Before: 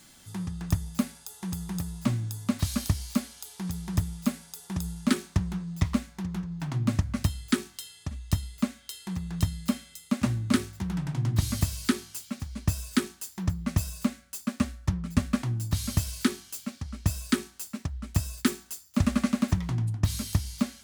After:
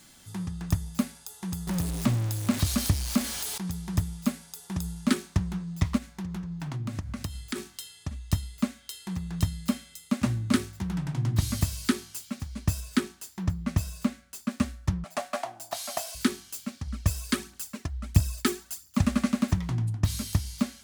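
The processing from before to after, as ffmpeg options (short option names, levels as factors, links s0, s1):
-filter_complex "[0:a]asettb=1/sr,asplit=3[s0][s1][s2];[s0]atrim=end=1.674[s3];[s1]atrim=start=1.67:end=3.58,asetpts=PTS-STARTPTS,afade=t=in:d=0.004:c=qsin,afade=t=out:st=1.906:d=0.004:c=qsin,aeval=exprs='val(0)+0.5*0.0335*sgn(val(0))':c=same[s4];[s2]atrim=start=3.576[s5];[s3][s4]acrossfade=d=0.004:c1=hsin:c2=qsin[s6];[s6][s5]acrossfade=d=0.004:c1=qsin:c2=hsin,asplit=3[s7][s8][s9];[s7]afade=t=out:st=5.97:d=0.02[s10];[s8]acompressor=threshold=0.0282:ratio=3:attack=3.2:release=140:knee=1:detection=peak,afade=t=in:st=5.97:d=0.02,afade=t=out:st=7.55:d=0.02[s11];[s9]afade=t=in:st=7.55:d=0.02[s12];[s10][s11][s12]amix=inputs=3:normalize=0,asettb=1/sr,asplit=3[s13][s14][s15];[s13]atrim=end=12.804[s16];[s14]atrim=start=12.8:end=14.51,asetpts=PTS-STARTPTS,afade=t=in:d=0.004:c=qsin,afade=t=out:st=1.706:d=0.004:c=qsin,highshelf=f=5300:g=-5[s17];[s15]atrim=start=14.506[s18];[s16][s17]acrossfade=d=0.004:c1=hsin:c2=qsin[s19];[s19][s18]acrossfade=d=0.004:c1=qsin:c2=hsin,asettb=1/sr,asplit=3[s20][s21][s22];[s20]atrim=end=15.044[s23];[s21]atrim=start=15.04:end=16.15,asetpts=PTS-STARTPTS,afade=t=in:d=0.004:c=qsin,afade=t=out:st=1.106:d=0.004:c=qsin,highpass=f=690:t=q:w=8.5[s24];[s22]atrim=start=16.146[s25];[s23][s24]acrossfade=d=0.004:c1=hsin:c2=qsin[s26];[s26][s25]acrossfade=d=0.004:c1=qsin:c2=hsin,asettb=1/sr,asplit=3[s27][s28][s29];[s27]atrim=end=16.874[s30];[s28]atrim=start=16.87:end=19.01,asetpts=PTS-STARTPTS,afade=t=in:d=0.004:c=qsin,afade=t=out:st=2.136:d=0.004:c=qsin,aphaser=in_gain=1:out_gain=1:delay=3:decay=0.5:speed=1.5:type=triangular[s31];[s29]atrim=start=19.006[s32];[s30][s31]acrossfade=d=0.004:c1=hsin:c2=qsin[s33];[s33][s32]acrossfade=d=0.004:c1=qsin:c2=hsin"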